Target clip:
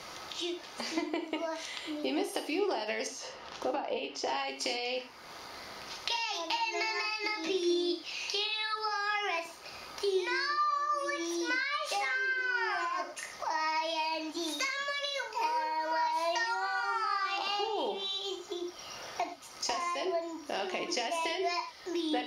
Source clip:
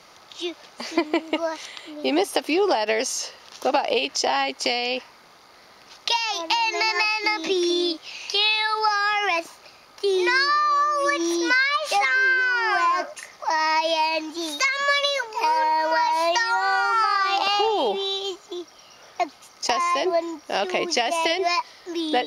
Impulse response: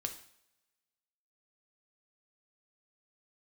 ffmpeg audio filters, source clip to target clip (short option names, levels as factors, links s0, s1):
-filter_complex "[0:a]asettb=1/sr,asplit=3[s0][s1][s2];[s0]atrim=end=3.074[s3];[s1]atrim=start=3.07:end=4.28,asetpts=PTS-STARTPTS,afade=t=in:d=0.004:c=qsin,afade=t=out:st=1.206:d=0.004:c=qsin,lowpass=f=1600:p=1[s4];[s2]atrim=start=4.276[s5];[s3][s4]acrossfade=d=0.004:c1=hsin:c2=qsin[s6];[s6][s5]acrossfade=d=0.004:c1=qsin:c2=hsin,acompressor=threshold=0.00631:ratio=2.5[s7];[1:a]atrim=start_sample=2205,atrim=end_sample=4410,asetrate=33957,aresample=44100[s8];[s7][s8]afir=irnorm=-1:irlink=0,volume=1.58"